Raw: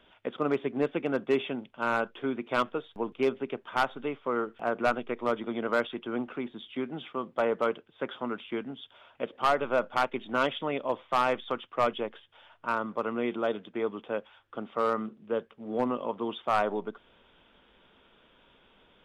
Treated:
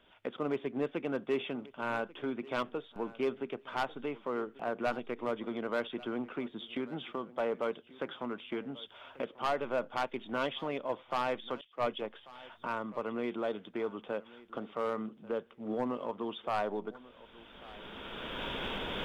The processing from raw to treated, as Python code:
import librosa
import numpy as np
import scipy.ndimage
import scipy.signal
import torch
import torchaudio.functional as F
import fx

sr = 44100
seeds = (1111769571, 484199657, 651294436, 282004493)

p1 = fx.recorder_agc(x, sr, target_db=-22.5, rise_db_per_s=18.0, max_gain_db=30)
p2 = fx.dynamic_eq(p1, sr, hz=1300.0, q=5.0, threshold_db=-42.0, ratio=4.0, max_db=-5)
p3 = np.clip(10.0 ** (25.5 / 20.0) * p2, -1.0, 1.0) / 10.0 ** (25.5 / 20.0)
p4 = p2 + (p3 * librosa.db_to_amplitude(-6.5))
p5 = fx.echo_feedback(p4, sr, ms=1140, feedback_pct=17, wet_db=-20)
p6 = fx.band_widen(p5, sr, depth_pct=100, at=(11.61, 12.02))
y = p6 * librosa.db_to_amplitude(-8.0)